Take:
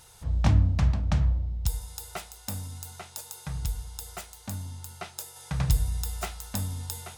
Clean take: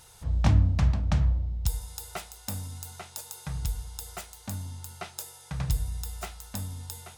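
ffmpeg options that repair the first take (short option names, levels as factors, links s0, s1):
-af "asetnsamples=n=441:p=0,asendcmd='5.36 volume volume -4dB',volume=1"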